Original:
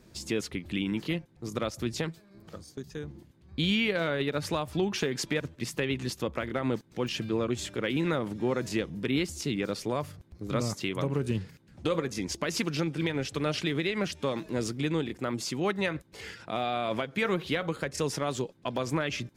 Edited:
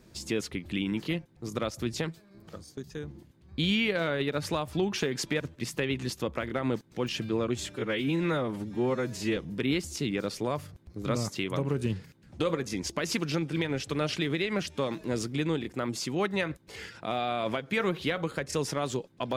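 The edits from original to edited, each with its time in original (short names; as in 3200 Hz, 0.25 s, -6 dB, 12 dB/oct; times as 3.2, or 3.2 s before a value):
7.72–8.82 stretch 1.5×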